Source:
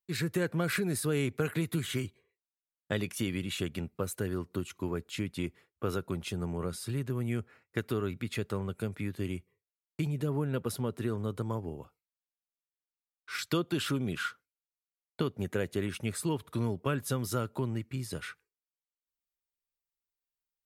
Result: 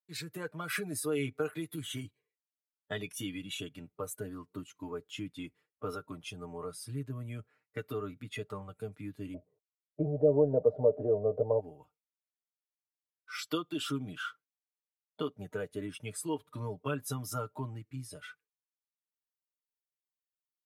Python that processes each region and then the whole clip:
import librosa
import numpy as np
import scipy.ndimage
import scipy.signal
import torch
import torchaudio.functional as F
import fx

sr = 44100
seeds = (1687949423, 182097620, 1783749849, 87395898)

y = fx.chain(x, sr, fx.law_mismatch(coded='mu'),
    fx.lowpass_res(hz=620.0, q=5.6),
    fx.dynamic_eq(hz=480.0, q=2.5, threshold_db=-42.0, ratio=4.0, max_db=6), at=(9.34, 11.6))
y = fx.noise_reduce_blind(y, sr, reduce_db=10)
y = fx.low_shelf(y, sr, hz=150.0, db=-6.5)
y = y + 0.69 * np.pad(y, (int(6.6 * sr / 1000.0), 0))[:len(y)]
y = y * 10.0 ** (-3.5 / 20.0)